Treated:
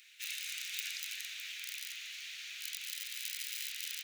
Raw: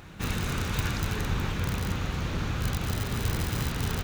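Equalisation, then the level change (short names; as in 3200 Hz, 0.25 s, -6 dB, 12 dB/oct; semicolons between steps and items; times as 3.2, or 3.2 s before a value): steep high-pass 2100 Hz 36 dB/oct; -2.0 dB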